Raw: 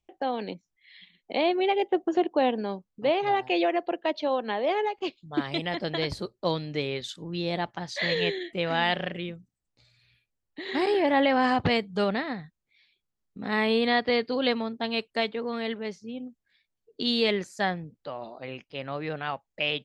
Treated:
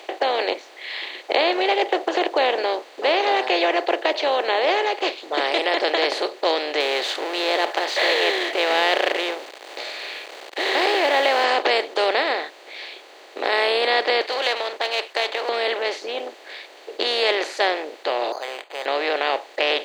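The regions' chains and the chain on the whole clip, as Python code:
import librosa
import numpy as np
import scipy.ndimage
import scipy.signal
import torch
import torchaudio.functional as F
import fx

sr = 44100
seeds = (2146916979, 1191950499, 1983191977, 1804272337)

y = fx.chain(x, sr, fx.law_mismatch(coded='mu'),
    fx.low_shelf(hz=410.0, db=-5.5), at=(6.8, 11.44))
y = fx.chain(y, sr, fx.halfwave_gain(db=-3.0),
    fx.highpass(hz=900.0, slope=12), at=(14.21, 15.49))
y = fx.chain(y, sr, fx.ladder_bandpass(hz=1200.0, resonance_pct=30),
    fx.resample_bad(factor=8, down='filtered', up='hold'), at=(18.32, 18.86))
y = fx.bin_compress(y, sr, power=0.4)
y = scipy.signal.sosfilt(scipy.signal.cheby2(4, 40, 190.0, 'highpass', fs=sr, output='sos'), y)
y = F.gain(torch.from_numpy(y), 1.0).numpy()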